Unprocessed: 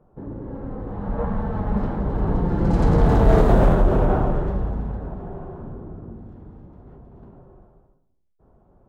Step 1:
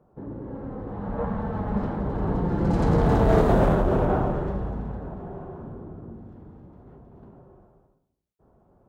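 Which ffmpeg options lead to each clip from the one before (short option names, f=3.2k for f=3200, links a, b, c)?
-af "highpass=f=79:p=1,volume=-1.5dB"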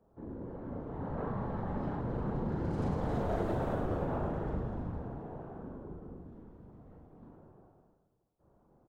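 -af "afftfilt=real='hypot(re,im)*cos(2*PI*random(0))':imag='hypot(re,im)*sin(2*PI*random(1))':win_size=512:overlap=0.75,acompressor=threshold=-30dB:ratio=4,aecho=1:1:40|104|206.4|370.2|632.4:0.631|0.398|0.251|0.158|0.1,volume=-2.5dB"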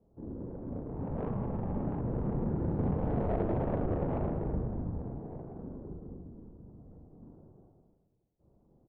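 -af "adynamicsmooth=sensitivity=1:basefreq=590,volume=3dB"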